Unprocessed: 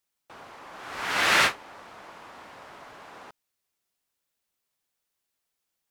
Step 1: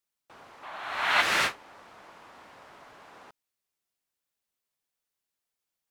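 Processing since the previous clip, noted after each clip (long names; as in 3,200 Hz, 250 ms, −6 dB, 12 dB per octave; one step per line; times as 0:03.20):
gain on a spectral selection 0:00.63–0:01.21, 580–4,400 Hz +9 dB
level −5 dB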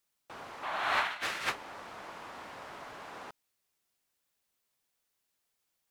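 compressor whose output falls as the input rises −31 dBFS, ratio −0.5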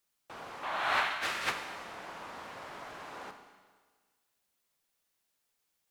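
four-comb reverb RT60 1.5 s, combs from 32 ms, DRR 6.5 dB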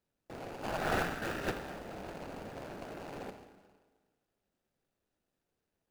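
running median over 41 samples
level +8 dB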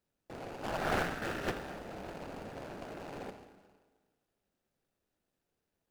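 highs frequency-modulated by the lows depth 0.25 ms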